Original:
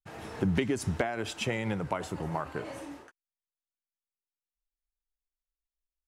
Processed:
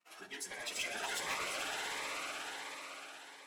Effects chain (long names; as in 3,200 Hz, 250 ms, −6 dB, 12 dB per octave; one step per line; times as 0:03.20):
reversed piece by piece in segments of 93 ms
source passing by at 0:02.29, 9 m/s, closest 2.4 metres
reverb reduction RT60 1.2 s
in parallel at +2 dB: downward compressor 4 to 1, threshold −52 dBFS, peak gain reduction 20 dB
on the sum: noise gate −55 dBFS, range −41 dB
on a send at −4 dB: convolution reverb RT60 0.45 s, pre-delay 3 ms
on the sum: harmonic generator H 3 −25 dB, 4 −36 dB, 6 −43 dB, 7 −6 dB, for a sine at −15.5 dBFS
high-pass filter 1,100 Hz 12 dB per octave
echo that builds up and dies away 108 ms, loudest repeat 8, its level −11.5 dB
soft clipping −32.5 dBFS, distortion −11 dB
time stretch by phase vocoder 0.57×
phaser whose notches keep moving one way rising 1.4 Hz
level +6 dB